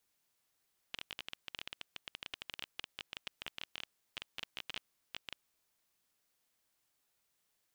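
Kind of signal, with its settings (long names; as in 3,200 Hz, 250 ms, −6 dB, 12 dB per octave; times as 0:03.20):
Geiger counter clicks 16 per second −24 dBFS 4.40 s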